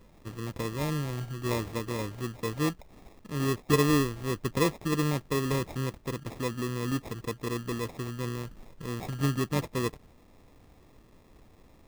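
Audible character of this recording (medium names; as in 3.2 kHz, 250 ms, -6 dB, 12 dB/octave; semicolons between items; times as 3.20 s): aliases and images of a low sample rate 1.5 kHz, jitter 0%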